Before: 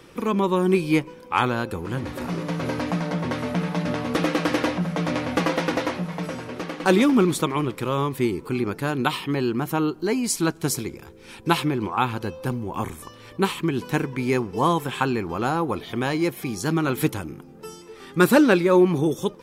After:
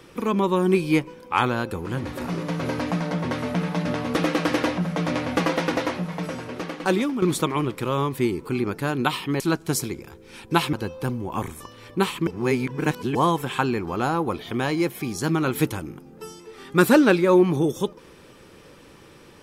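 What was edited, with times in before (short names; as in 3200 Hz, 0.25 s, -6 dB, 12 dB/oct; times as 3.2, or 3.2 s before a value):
6.66–7.22 fade out, to -12 dB
9.4–10.35 cut
11.68–12.15 cut
13.69–14.57 reverse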